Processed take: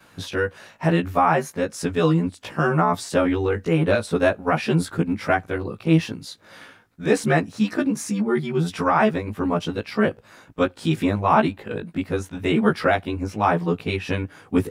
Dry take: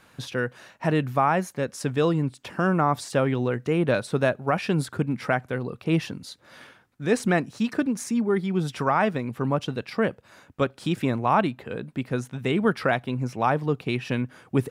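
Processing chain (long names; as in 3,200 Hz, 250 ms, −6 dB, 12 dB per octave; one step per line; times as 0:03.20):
every overlapping window played backwards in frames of 37 ms
level +6.5 dB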